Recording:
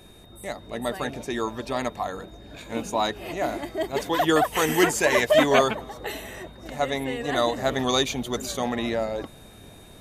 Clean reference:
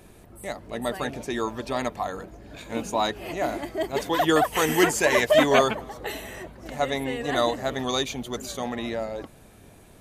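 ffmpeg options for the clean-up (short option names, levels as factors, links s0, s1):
-af "bandreject=f=3700:w=30,asetnsamples=n=441:p=0,asendcmd='7.56 volume volume -3.5dB',volume=1"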